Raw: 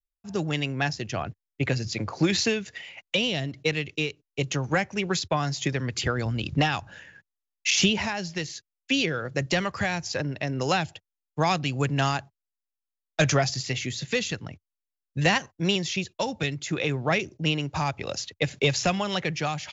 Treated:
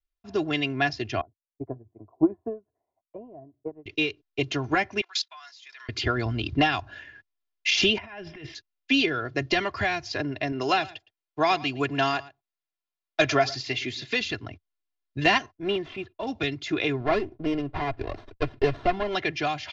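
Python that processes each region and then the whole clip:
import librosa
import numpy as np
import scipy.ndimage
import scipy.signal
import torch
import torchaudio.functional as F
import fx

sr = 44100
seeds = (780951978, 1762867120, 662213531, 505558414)

y = fx.chain(x, sr, fx.cheby1_lowpass(hz=1000.0, order=4),
    fx.peak_eq(hz=660.0, db=4.5, octaves=0.79),
    fx.upward_expand(threshold_db=-35.0, expansion=2.5), at=(1.21, 3.86))
y = fx.chain(y, sr, fx.highpass(hz=960.0, slope=24),
    fx.high_shelf(hz=3300.0, db=9.5),
    fx.level_steps(step_db=24), at=(5.01, 5.89))
y = fx.chain(y, sr, fx.savgol(points=25),
    fx.over_compress(threshold_db=-36.0, ratio=-0.5), at=(7.98, 8.55))
y = fx.chain(y, sr, fx.low_shelf(hz=130.0, db=-10.5),
    fx.echo_single(ms=113, db=-20.0), at=(10.52, 14.21))
y = fx.chain(y, sr, fx.median_filter(points=9),
    fx.high_shelf(hz=3400.0, db=-11.5),
    fx.transient(attack_db=-7, sustain_db=-3), at=(15.54, 16.27))
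y = fx.chain(y, sr, fx.lowpass(hz=2300.0, slope=12),
    fx.running_max(window=17), at=(17.0, 19.15))
y = scipy.signal.sosfilt(scipy.signal.butter(4, 4800.0, 'lowpass', fs=sr, output='sos'), y)
y = y + 0.77 * np.pad(y, (int(2.9 * sr / 1000.0), 0))[:len(y)]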